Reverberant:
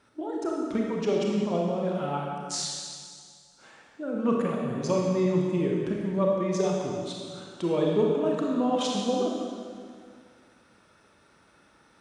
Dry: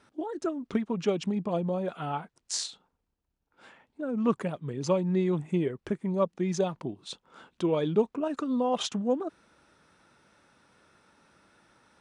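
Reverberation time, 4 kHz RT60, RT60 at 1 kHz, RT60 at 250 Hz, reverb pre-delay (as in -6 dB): 2.0 s, 2.0 s, 2.0 s, 2.2 s, 27 ms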